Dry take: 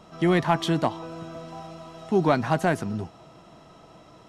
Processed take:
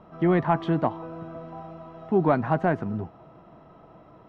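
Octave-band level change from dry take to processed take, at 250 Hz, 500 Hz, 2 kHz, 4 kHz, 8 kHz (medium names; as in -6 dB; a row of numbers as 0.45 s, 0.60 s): 0.0 dB, 0.0 dB, -3.5 dB, under -10 dB, under -25 dB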